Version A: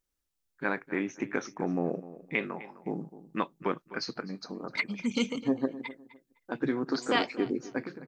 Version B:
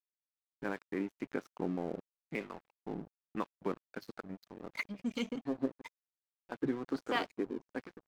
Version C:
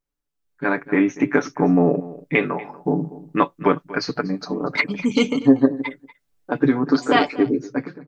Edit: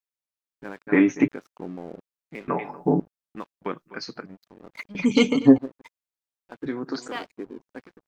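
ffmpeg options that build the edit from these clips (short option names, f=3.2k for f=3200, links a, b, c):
-filter_complex "[2:a]asplit=3[a][b][c];[0:a]asplit=2[d][e];[1:a]asplit=6[f][g][h][i][j][k];[f]atrim=end=0.872[l];[a]atrim=start=0.868:end=1.282[m];[g]atrim=start=1.278:end=2.482[n];[b]atrim=start=2.478:end=3.002[o];[h]atrim=start=2.998:end=3.662[p];[d]atrim=start=3.658:end=4.262[q];[i]atrim=start=4.258:end=4.952[r];[c]atrim=start=4.948:end=5.582[s];[j]atrim=start=5.578:end=6.662[t];[e]atrim=start=6.658:end=7.082[u];[k]atrim=start=7.078[v];[l][m]acrossfade=d=0.004:c1=hsin:c2=hsin[w];[w][n]acrossfade=d=0.004:c1=hsin:c2=hsin[x];[x][o]acrossfade=d=0.004:c1=hsin:c2=hsin[y];[y][p]acrossfade=d=0.004:c1=hsin:c2=hsin[z];[z][q]acrossfade=d=0.004:c1=hsin:c2=hsin[aa];[aa][r]acrossfade=d=0.004:c1=hsin:c2=hsin[ab];[ab][s]acrossfade=d=0.004:c1=hsin:c2=hsin[ac];[ac][t]acrossfade=d=0.004:c1=hsin:c2=hsin[ad];[ad][u]acrossfade=d=0.004:c1=hsin:c2=hsin[ae];[ae][v]acrossfade=d=0.004:c1=hsin:c2=hsin"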